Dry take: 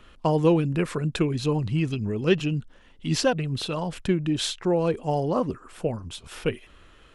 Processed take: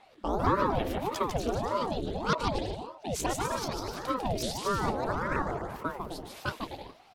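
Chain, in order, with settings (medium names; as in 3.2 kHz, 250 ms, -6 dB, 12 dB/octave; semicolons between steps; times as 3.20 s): sawtooth pitch modulation +8.5 st, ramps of 233 ms; bouncing-ball echo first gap 150 ms, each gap 0.7×, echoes 5; ring modulator with a swept carrier 460 Hz, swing 75%, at 1.7 Hz; trim -4 dB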